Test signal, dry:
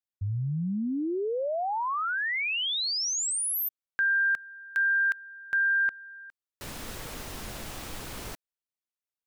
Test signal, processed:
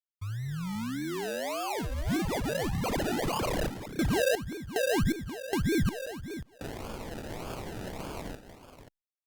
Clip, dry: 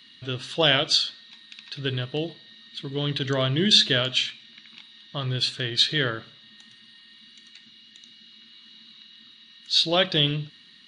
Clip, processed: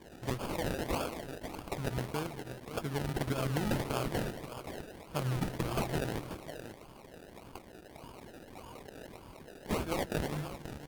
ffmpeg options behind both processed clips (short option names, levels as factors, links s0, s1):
-filter_complex "[0:a]acrossover=split=220[s0][s1];[s0]dynaudnorm=f=150:g=31:m=1.68[s2];[s2][s1]amix=inputs=2:normalize=0,alimiter=limit=0.178:level=0:latency=1:release=235,highshelf=f=2200:g=9,acompressor=threshold=0.0631:ratio=16:attack=12:release=167:knee=6:detection=rms,equalizer=f=1500:t=o:w=0.27:g=5.5,asplit=2[s3][s4];[s4]aecho=0:1:222|535:0.178|0.316[s5];[s3][s5]amix=inputs=2:normalize=0,acrusher=samples=32:mix=1:aa=0.000001:lfo=1:lforange=19.2:lforate=1.7,aeval=exprs='sgn(val(0))*max(abs(val(0))-0.00188,0)':c=same,volume=0.631" -ar 48000 -c:a libopus -b:a 48k